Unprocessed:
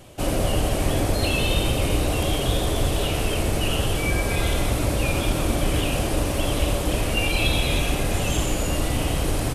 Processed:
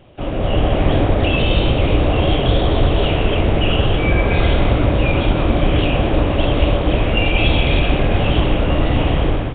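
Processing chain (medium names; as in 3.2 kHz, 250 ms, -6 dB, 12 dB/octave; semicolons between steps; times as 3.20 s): distance through air 57 m; level rider gain up to 10 dB; Nellymoser 16 kbps 8 kHz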